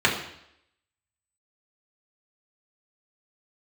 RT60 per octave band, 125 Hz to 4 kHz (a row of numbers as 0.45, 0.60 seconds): 0.70, 0.70, 0.75, 0.75, 0.75, 0.75 seconds